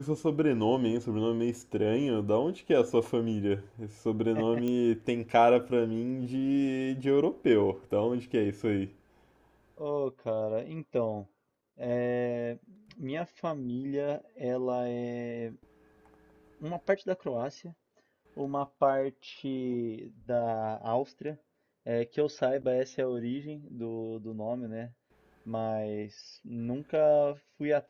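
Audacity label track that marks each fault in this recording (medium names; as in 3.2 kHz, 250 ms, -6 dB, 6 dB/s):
4.680000	4.680000	pop -21 dBFS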